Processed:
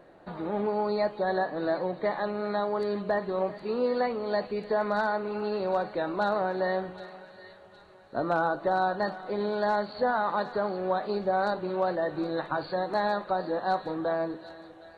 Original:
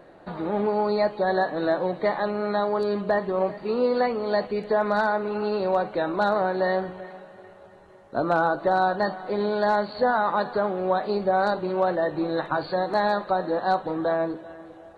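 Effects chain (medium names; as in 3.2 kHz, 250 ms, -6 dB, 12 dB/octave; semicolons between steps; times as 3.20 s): 1.38–2.11 s: treble shelf 4.2 kHz -6.5 dB; on a send: feedback echo behind a high-pass 764 ms, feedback 43%, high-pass 2.4 kHz, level -9.5 dB; on the sum: trim -4.5 dB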